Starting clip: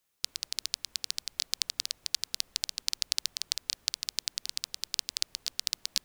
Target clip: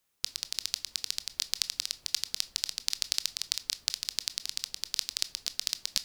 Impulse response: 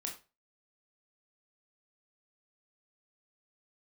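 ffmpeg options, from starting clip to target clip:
-filter_complex "[0:a]asplit=2[s0][s1];[1:a]atrim=start_sample=2205,lowshelf=f=150:g=10[s2];[s1][s2]afir=irnorm=-1:irlink=0,volume=0.376[s3];[s0][s3]amix=inputs=2:normalize=0,volume=0.841"

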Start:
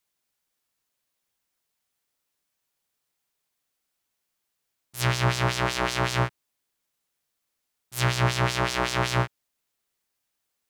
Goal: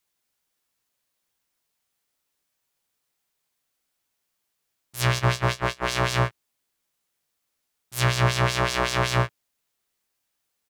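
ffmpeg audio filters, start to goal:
-filter_complex "[0:a]asplit=3[s0][s1][s2];[s0]afade=t=out:st=5.18:d=0.02[s3];[s1]agate=range=0.0398:threshold=0.0631:ratio=16:detection=peak,afade=t=in:st=5.18:d=0.02,afade=t=out:st=5.86:d=0.02[s4];[s2]afade=t=in:st=5.86:d=0.02[s5];[s3][s4][s5]amix=inputs=3:normalize=0,asplit=2[s6][s7];[s7]adelay=18,volume=0.282[s8];[s6][s8]amix=inputs=2:normalize=0,volume=1.19"

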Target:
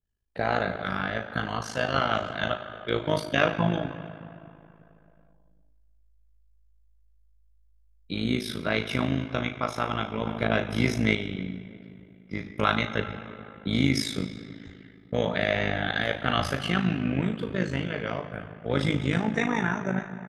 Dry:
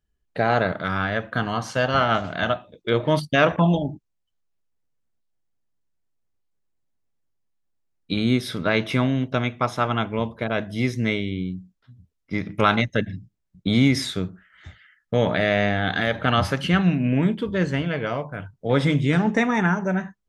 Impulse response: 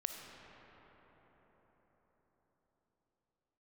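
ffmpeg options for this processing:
-filter_complex "[0:a]asplit=2[s0][s1];[s1]highshelf=f=10000:g=6.5[s2];[1:a]atrim=start_sample=2205,asetrate=83790,aresample=44100,adelay=37[s3];[s2][s3]afir=irnorm=-1:irlink=0,volume=0.841[s4];[s0][s4]amix=inputs=2:normalize=0,asettb=1/sr,asplit=3[s5][s6][s7];[s5]atrim=end=10.264[s8];[s6]atrim=start=10.26:end=11.15,asetpts=PTS-STARTPTS,afade=t=in:d=0.004:c=qsin,afade=t=out:st=0.886:d=0.004:c=qsin,acontrast=32[s9];[s7]atrim=start=11.146[s10];[s8][s9]acrossfade=d=0.004:c1=hsin:c2=qsin[s11];[s11][s10]acrossfade=d=0.004:c1=qsin:c2=hsin,asplit=2[s12][s13];[s13]adelay=318,lowpass=f=2300:p=1,volume=0.112,asplit=2[s14][s15];[s15]adelay=318,lowpass=f=2300:p=1,volume=0.34,asplit=2[s16][s17];[s17]adelay=318,lowpass=f=2300:p=1,volume=0.34[s18];[s12][s14][s16][s18]amix=inputs=4:normalize=0,tremolo=f=53:d=0.824,adynamicequalizer=threshold=0.02:dfrequency=1700:dqfactor=0.7:tfrequency=1700:tqfactor=0.7:attack=5:release=100:ratio=0.375:range=1.5:mode=boostabove:tftype=highshelf,volume=0.708"

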